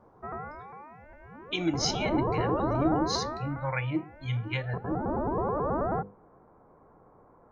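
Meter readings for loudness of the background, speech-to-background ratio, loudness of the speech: -32.0 LUFS, 0.0 dB, -32.0 LUFS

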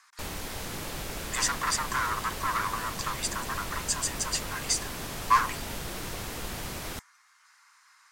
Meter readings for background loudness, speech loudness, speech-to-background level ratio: -36.5 LUFS, -29.5 LUFS, 7.0 dB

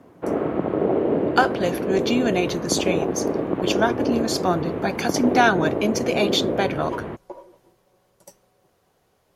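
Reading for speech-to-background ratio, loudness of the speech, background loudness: 1.5 dB, -23.5 LUFS, -25.0 LUFS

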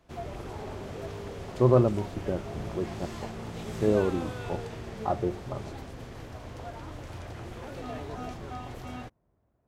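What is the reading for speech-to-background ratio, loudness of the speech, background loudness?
10.5 dB, -29.0 LUFS, -39.5 LUFS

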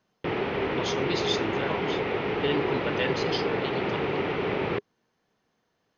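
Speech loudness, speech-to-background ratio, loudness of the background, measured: -33.0 LUFS, -4.5 dB, -28.5 LUFS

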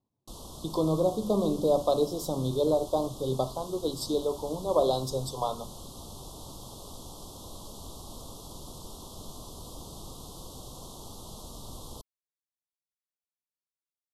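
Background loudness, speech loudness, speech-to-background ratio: -44.5 LUFS, -29.0 LUFS, 15.5 dB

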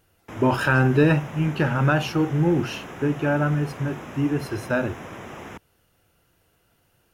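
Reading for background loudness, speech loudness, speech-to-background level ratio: -38.5 LUFS, -23.0 LUFS, 15.5 dB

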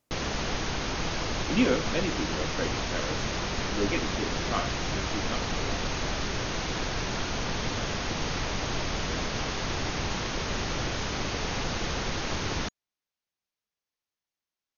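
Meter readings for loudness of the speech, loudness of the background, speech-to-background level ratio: -33.0 LUFS, -31.0 LUFS, -2.0 dB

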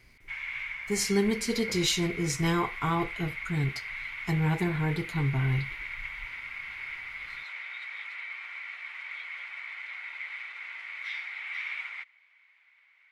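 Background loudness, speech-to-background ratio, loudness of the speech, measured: -37.0 LUFS, 8.0 dB, -29.0 LUFS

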